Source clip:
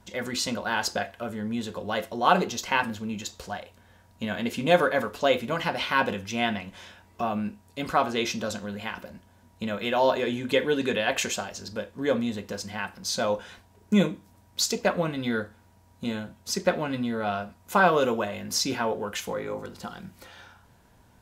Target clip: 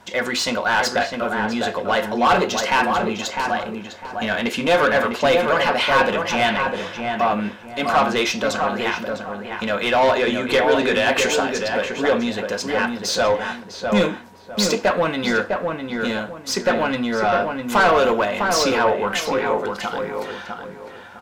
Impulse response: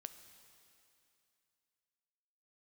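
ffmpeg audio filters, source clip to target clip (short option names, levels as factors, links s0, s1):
-filter_complex "[0:a]asplit=2[s0][s1];[s1]highpass=f=720:p=1,volume=15.8,asoftclip=type=tanh:threshold=0.631[s2];[s0][s2]amix=inputs=2:normalize=0,lowpass=f=2900:p=1,volume=0.501,asplit=2[s3][s4];[s4]adelay=654,lowpass=f=1800:p=1,volume=0.631,asplit=2[s5][s6];[s6]adelay=654,lowpass=f=1800:p=1,volume=0.31,asplit=2[s7][s8];[s8]adelay=654,lowpass=f=1800:p=1,volume=0.31,asplit=2[s9][s10];[s10]adelay=654,lowpass=f=1800:p=1,volume=0.31[s11];[s3][s5][s7][s9][s11]amix=inputs=5:normalize=0,volume=0.708"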